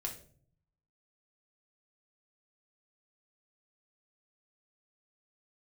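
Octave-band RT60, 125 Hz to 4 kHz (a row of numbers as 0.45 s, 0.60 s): 1.1 s, 0.85 s, 0.60 s, 0.40 s, 0.35 s, 0.35 s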